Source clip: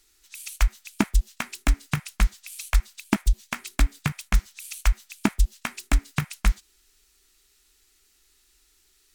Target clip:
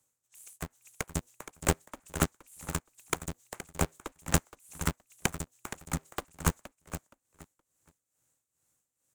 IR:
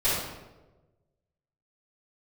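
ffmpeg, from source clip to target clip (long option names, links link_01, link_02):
-filter_complex "[0:a]aeval=exprs='0.668*(cos(1*acos(clip(val(0)/0.668,-1,1)))-cos(1*PI/2))+0.0668*(cos(3*acos(clip(val(0)/0.668,-1,1)))-cos(3*PI/2))+0.0841*(cos(7*acos(clip(val(0)/0.668,-1,1)))-cos(7*PI/2))':channel_layout=same,highshelf=frequency=5900:width_type=q:width=3:gain=6.5,acrossover=split=410|1000[link_01][link_02][link_03];[link_02]aeval=exprs='0.133*sin(PI/2*4.47*val(0)/0.133)':channel_layout=same[link_04];[link_01][link_04][link_03]amix=inputs=3:normalize=0,tremolo=f=2.3:d=0.78,asplit=2[link_05][link_06];[link_06]aecho=0:1:470|940|1410:0.251|0.0553|0.0122[link_07];[link_05][link_07]amix=inputs=2:normalize=0,aeval=exprs='val(0)*sgn(sin(2*PI*120*n/s))':channel_layout=same,volume=-4.5dB"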